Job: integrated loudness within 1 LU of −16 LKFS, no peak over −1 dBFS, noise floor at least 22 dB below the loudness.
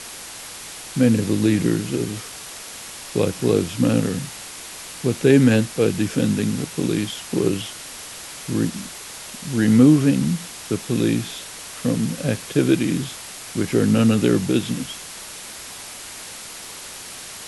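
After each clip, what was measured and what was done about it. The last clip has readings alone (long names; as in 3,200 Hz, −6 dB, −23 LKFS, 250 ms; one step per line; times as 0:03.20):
background noise floor −37 dBFS; target noise floor −43 dBFS; integrated loudness −20.5 LKFS; sample peak −2.5 dBFS; target loudness −16.0 LKFS
→ broadband denoise 6 dB, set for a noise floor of −37 dBFS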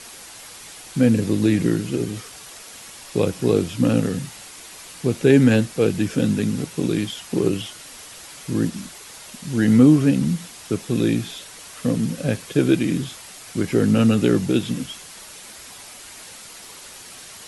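background noise floor −41 dBFS; target noise floor −43 dBFS
→ broadband denoise 6 dB, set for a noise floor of −41 dBFS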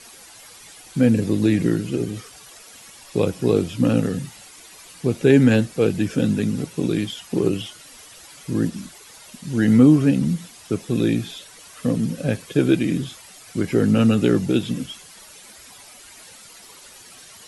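background noise floor −45 dBFS; integrated loudness −20.5 LKFS; sample peak −2.5 dBFS; target loudness −16.0 LKFS
→ level +4.5 dB
brickwall limiter −1 dBFS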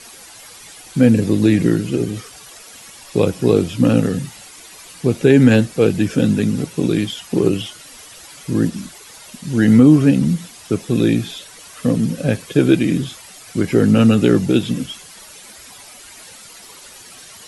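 integrated loudness −16.5 LKFS; sample peak −1.0 dBFS; background noise floor −41 dBFS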